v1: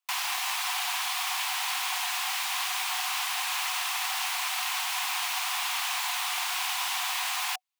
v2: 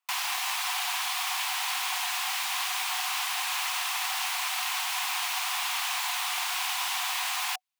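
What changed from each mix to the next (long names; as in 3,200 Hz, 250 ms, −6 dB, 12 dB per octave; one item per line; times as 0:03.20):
speech +9.0 dB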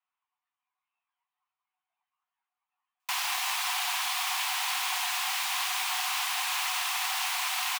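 speech −3.0 dB
background: entry +3.00 s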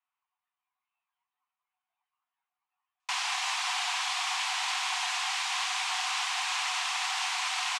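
master: add low-pass filter 8,100 Hz 24 dB per octave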